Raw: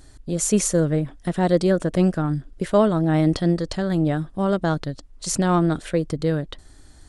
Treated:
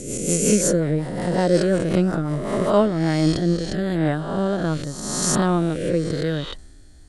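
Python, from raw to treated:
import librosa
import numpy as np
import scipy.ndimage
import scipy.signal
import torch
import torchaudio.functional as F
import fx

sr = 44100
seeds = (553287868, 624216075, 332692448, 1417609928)

y = fx.spec_swells(x, sr, rise_s=1.52)
y = fx.rotary_switch(y, sr, hz=5.5, then_hz=0.9, switch_at_s=2.33)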